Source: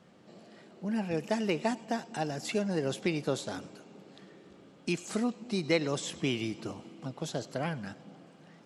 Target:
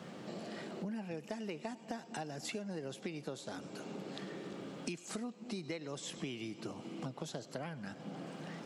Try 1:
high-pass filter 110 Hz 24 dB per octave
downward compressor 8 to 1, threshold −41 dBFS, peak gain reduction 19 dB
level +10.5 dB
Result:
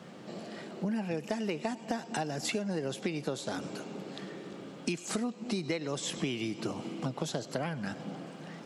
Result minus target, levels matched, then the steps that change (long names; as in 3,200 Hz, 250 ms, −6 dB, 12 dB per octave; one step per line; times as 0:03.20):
downward compressor: peak gain reduction −8.5 dB
change: downward compressor 8 to 1, threshold −50.5 dBFS, peak gain reduction 27.5 dB